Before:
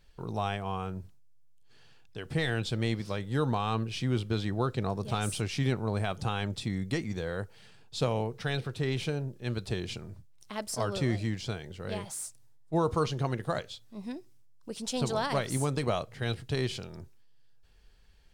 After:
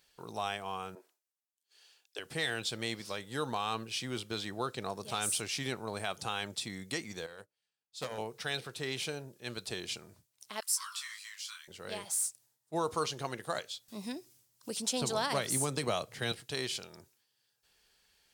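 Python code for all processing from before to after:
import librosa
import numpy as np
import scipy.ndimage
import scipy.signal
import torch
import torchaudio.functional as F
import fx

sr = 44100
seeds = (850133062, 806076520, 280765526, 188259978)

y = fx.chain(x, sr, fx.steep_highpass(hz=320.0, slope=36),
    fx.band_widen(depth_pct=70), at=(0.95, 2.19))
y = fx.chain(y, sr, fx.hum_notches(base_hz=60, count=10),
    fx.overload_stage(gain_db=26.0),
    fx.upward_expand(threshold_db=-49.0, expansion=2.5), at=(7.26, 8.18))
y = fx.chain(y, sr, fx.steep_highpass(hz=990.0, slope=96),
    fx.high_shelf(hz=8200.0, db=8.0),
    fx.detune_double(cents=23), at=(10.6, 11.68))
y = fx.chain(y, sr, fx.low_shelf(hz=290.0, db=8.0),
    fx.band_squash(depth_pct=40), at=(13.88, 16.32))
y = fx.highpass(y, sr, hz=520.0, slope=6)
y = fx.high_shelf(y, sr, hz=4700.0, db=10.5)
y = F.gain(torch.from_numpy(y), -2.0).numpy()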